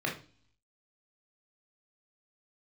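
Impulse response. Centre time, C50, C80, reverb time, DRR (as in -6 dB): 23 ms, 8.5 dB, 15.5 dB, 0.40 s, -1.5 dB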